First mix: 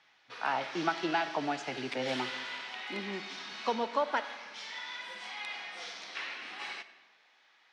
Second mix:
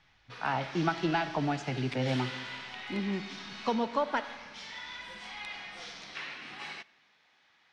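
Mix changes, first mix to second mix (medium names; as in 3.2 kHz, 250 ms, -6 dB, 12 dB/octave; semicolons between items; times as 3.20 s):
background: send -10.5 dB; master: remove high-pass 340 Hz 12 dB/octave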